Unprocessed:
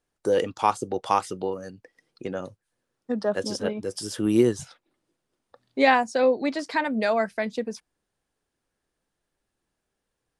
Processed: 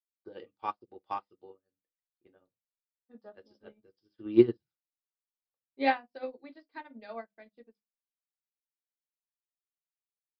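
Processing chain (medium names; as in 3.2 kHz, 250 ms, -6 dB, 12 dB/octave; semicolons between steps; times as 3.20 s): on a send at -4 dB: reverberation RT60 0.20 s, pre-delay 3 ms; on the sum: resampled via 11.025 kHz; upward expansion 2.5:1, over -39 dBFS; trim -3.5 dB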